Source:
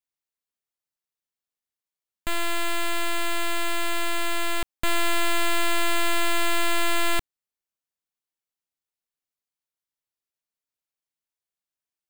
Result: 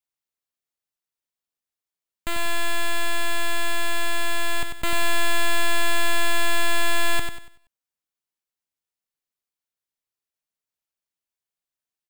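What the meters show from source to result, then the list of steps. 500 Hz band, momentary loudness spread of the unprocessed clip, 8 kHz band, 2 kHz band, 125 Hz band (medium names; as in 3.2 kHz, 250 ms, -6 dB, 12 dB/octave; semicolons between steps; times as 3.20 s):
0.0 dB, 5 LU, +1.0 dB, +2.5 dB, +4.5 dB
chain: on a send: feedback delay 78 ms, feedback 32%, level -22 dB; on the sum: bit-crushed delay 95 ms, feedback 35%, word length 10-bit, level -6.5 dB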